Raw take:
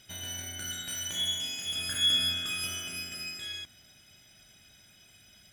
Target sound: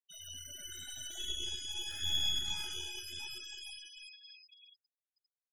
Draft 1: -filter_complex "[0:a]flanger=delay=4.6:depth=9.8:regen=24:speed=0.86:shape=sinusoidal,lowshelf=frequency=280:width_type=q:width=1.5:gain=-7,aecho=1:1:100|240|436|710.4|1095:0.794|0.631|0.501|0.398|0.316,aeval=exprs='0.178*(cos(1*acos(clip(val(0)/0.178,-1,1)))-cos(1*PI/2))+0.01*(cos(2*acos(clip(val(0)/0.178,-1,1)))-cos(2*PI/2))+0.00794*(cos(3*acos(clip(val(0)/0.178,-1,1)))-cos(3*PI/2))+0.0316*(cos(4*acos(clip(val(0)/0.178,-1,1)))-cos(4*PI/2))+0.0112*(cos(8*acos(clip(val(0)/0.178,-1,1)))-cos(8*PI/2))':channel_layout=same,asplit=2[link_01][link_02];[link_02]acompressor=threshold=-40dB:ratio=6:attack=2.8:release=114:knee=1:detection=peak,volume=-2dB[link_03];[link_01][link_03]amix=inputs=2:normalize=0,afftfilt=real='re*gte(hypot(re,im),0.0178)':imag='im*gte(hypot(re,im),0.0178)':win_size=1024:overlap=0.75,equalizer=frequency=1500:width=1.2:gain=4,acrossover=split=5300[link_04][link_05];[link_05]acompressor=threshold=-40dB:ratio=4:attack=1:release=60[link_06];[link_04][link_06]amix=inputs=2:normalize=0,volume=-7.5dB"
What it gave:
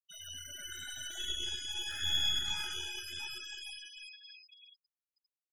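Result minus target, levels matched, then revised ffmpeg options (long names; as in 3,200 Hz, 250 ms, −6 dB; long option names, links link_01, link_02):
2,000 Hz band +4.0 dB
-filter_complex "[0:a]flanger=delay=4.6:depth=9.8:regen=24:speed=0.86:shape=sinusoidal,lowshelf=frequency=280:width_type=q:width=1.5:gain=-7,aecho=1:1:100|240|436|710.4|1095:0.794|0.631|0.501|0.398|0.316,aeval=exprs='0.178*(cos(1*acos(clip(val(0)/0.178,-1,1)))-cos(1*PI/2))+0.01*(cos(2*acos(clip(val(0)/0.178,-1,1)))-cos(2*PI/2))+0.00794*(cos(3*acos(clip(val(0)/0.178,-1,1)))-cos(3*PI/2))+0.0316*(cos(4*acos(clip(val(0)/0.178,-1,1)))-cos(4*PI/2))+0.0112*(cos(8*acos(clip(val(0)/0.178,-1,1)))-cos(8*PI/2))':channel_layout=same,asplit=2[link_01][link_02];[link_02]acompressor=threshold=-40dB:ratio=6:attack=2.8:release=114:knee=1:detection=peak,volume=-2dB[link_03];[link_01][link_03]amix=inputs=2:normalize=0,afftfilt=real='re*gte(hypot(re,im),0.0178)':imag='im*gte(hypot(re,im),0.0178)':win_size=1024:overlap=0.75,equalizer=frequency=1500:width=1.2:gain=-5.5,acrossover=split=5300[link_04][link_05];[link_05]acompressor=threshold=-40dB:ratio=4:attack=1:release=60[link_06];[link_04][link_06]amix=inputs=2:normalize=0,volume=-7.5dB"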